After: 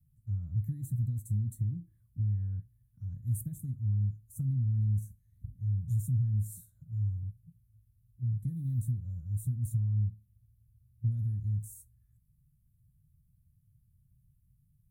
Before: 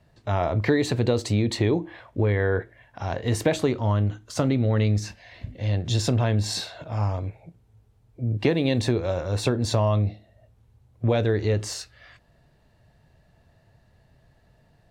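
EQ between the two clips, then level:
inverse Chebyshev band-stop filter 380–5,200 Hz, stop band 50 dB
dynamic equaliser 130 Hz, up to +4 dB, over −39 dBFS, Q 6.5
low-shelf EQ 320 Hz −9.5 dB
+2.5 dB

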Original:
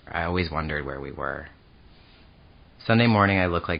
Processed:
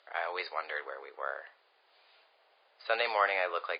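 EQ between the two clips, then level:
Butterworth high-pass 480 Hz 36 dB per octave
high-frequency loss of the air 57 metres
−6.0 dB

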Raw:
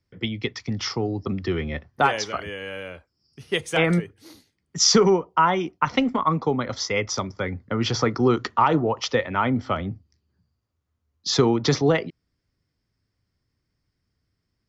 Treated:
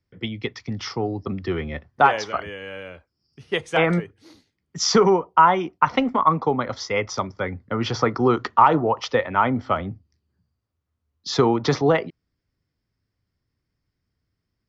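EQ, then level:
dynamic equaliser 920 Hz, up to +7 dB, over −34 dBFS, Q 0.73
high-frequency loss of the air 64 metres
−1.5 dB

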